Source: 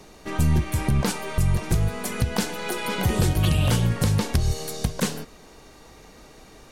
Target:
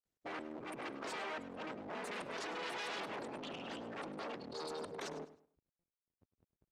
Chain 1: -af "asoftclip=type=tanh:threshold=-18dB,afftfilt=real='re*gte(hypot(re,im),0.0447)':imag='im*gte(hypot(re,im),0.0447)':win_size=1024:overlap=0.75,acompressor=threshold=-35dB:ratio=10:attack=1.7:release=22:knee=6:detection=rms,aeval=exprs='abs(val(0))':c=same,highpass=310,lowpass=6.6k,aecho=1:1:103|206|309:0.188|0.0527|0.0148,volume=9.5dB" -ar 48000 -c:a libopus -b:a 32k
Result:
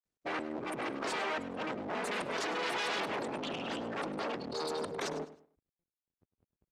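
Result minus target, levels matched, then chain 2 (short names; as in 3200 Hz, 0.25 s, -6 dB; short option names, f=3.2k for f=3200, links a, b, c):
compressor: peak gain reduction -7.5 dB
-af "asoftclip=type=tanh:threshold=-18dB,afftfilt=real='re*gte(hypot(re,im),0.0447)':imag='im*gte(hypot(re,im),0.0447)':win_size=1024:overlap=0.75,acompressor=threshold=-43.5dB:ratio=10:attack=1.7:release=22:knee=6:detection=rms,aeval=exprs='abs(val(0))':c=same,highpass=310,lowpass=6.6k,aecho=1:1:103|206|309:0.188|0.0527|0.0148,volume=9.5dB" -ar 48000 -c:a libopus -b:a 32k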